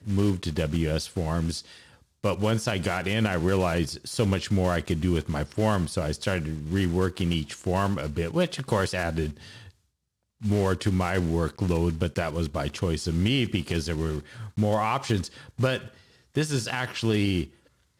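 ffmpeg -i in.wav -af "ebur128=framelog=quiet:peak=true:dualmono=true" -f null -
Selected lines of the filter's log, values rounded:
Integrated loudness:
  I:         -24.1 LUFS
  Threshold: -34.4 LUFS
Loudness range:
  LRA:         2.4 LU
  Threshold: -44.4 LUFS
  LRA low:   -25.5 LUFS
  LRA high:  -23.2 LUFS
True peak:
  Peak:      -12.3 dBFS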